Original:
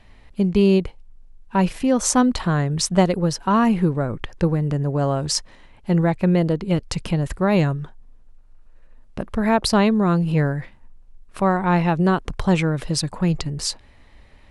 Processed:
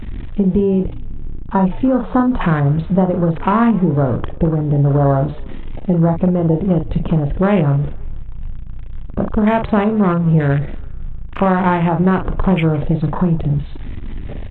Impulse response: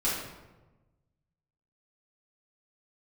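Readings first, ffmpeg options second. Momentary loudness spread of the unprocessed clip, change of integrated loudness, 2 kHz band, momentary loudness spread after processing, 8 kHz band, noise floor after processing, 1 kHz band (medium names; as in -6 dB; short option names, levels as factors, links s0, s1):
9 LU, +4.5 dB, +2.0 dB, 19 LU, under -40 dB, -28 dBFS, +4.0 dB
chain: -filter_complex "[0:a]aeval=exprs='val(0)+0.5*0.0473*sgn(val(0))':c=same,aresample=8000,aresample=44100,acompressor=threshold=0.126:ratio=8,asplit=2[s0][s1];[s1]adelay=43,volume=0.473[s2];[s0][s2]amix=inputs=2:normalize=0,afwtdn=0.0316,asplit=2[s3][s4];[s4]asplit=4[s5][s6][s7][s8];[s5]adelay=165,afreqshift=-74,volume=0.0841[s9];[s6]adelay=330,afreqshift=-148,volume=0.0447[s10];[s7]adelay=495,afreqshift=-222,volume=0.0237[s11];[s8]adelay=660,afreqshift=-296,volume=0.0126[s12];[s9][s10][s11][s12]amix=inputs=4:normalize=0[s13];[s3][s13]amix=inputs=2:normalize=0,volume=2.24" -ar 24000 -c:a aac -b:a 64k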